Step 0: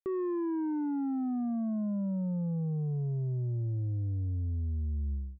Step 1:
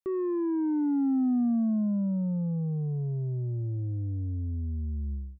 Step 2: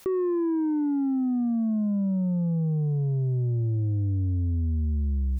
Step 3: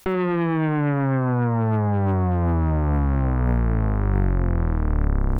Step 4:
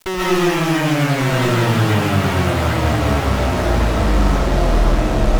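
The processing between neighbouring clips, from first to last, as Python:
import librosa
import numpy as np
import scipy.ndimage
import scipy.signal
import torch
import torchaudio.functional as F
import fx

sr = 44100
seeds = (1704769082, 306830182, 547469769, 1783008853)

y1 = fx.dynamic_eq(x, sr, hz=250.0, q=1.6, threshold_db=-46.0, ratio=4.0, max_db=7)
y2 = fx.rider(y1, sr, range_db=5, speed_s=0.5)
y2 = fx.quant_float(y2, sr, bits=8)
y2 = fx.env_flatten(y2, sr, amount_pct=100)
y2 = y2 * 10.0 ** (1.5 / 20.0)
y3 = fx.octave_divider(y2, sr, octaves=1, level_db=3.0)
y3 = y3 + 10.0 ** (-17.0 / 20.0) * np.pad(y3, (int(82 * sr / 1000.0), 0))[:len(y3)]
y3 = fx.cheby_harmonics(y3, sr, harmonics=(2, 4, 8), levels_db=(-8, -9, -13), full_scale_db=-14.5)
y4 = fx.fuzz(y3, sr, gain_db=42.0, gate_db=-41.0)
y4 = y4 + 10.0 ** (-5.0 / 20.0) * np.pad(y4, (int(1142 * sr / 1000.0), 0))[:len(y4)]
y4 = fx.rev_freeverb(y4, sr, rt60_s=0.71, hf_ratio=0.6, predelay_ms=100, drr_db=-5.5)
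y4 = y4 * 10.0 ** (-7.5 / 20.0)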